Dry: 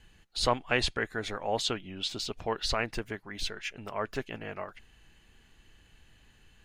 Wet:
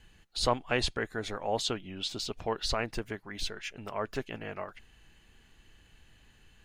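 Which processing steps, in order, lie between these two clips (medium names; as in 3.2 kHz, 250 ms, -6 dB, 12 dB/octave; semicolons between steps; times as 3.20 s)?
dynamic bell 2.1 kHz, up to -4 dB, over -41 dBFS, Q 0.93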